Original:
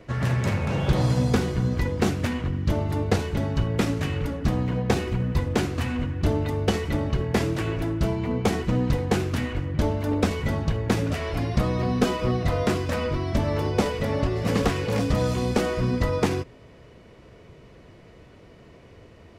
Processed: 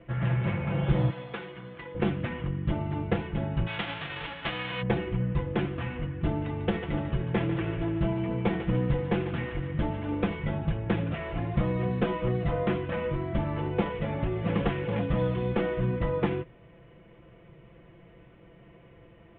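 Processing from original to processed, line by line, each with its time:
0:01.10–0:01.95: high-pass filter 1,200 Hz 6 dB per octave
0:03.66–0:04.81: spectral envelope flattened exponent 0.1
0:06.27–0:10.32: feedback echo with a high-pass in the loop 146 ms, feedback 62%, level −9.5 dB
whole clip: Butterworth low-pass 3,400 Hz 72 dB per octave; parametric band 89 Hz +3.5 dB 1.7 octaves; comb filter 5.9 ms, depth 66%; level −6.5 dB

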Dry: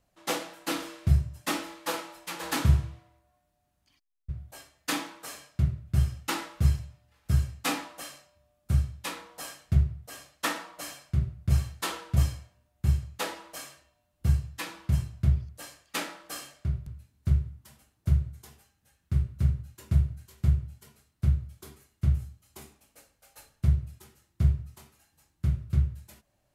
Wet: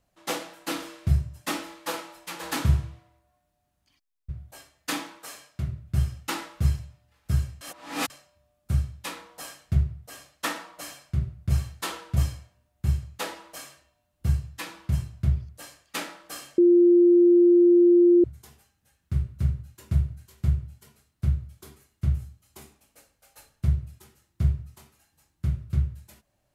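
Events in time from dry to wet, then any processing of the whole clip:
0:05.19–0:05.69: low-shelf EQ 240 Hz −6.5 dB
0:07.61–0:08.10: reverse
0:16.58–0:18.24: beep over 349 Hz −13 dBFS

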